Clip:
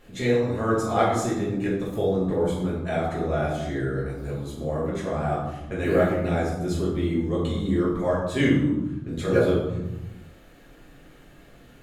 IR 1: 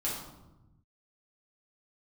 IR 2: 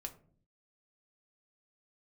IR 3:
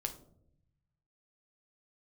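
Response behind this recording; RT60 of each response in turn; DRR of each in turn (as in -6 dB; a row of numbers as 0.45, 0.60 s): 1; 1.0, 0.50, 0.70 s; -7.0, 4.0, 5.5 dB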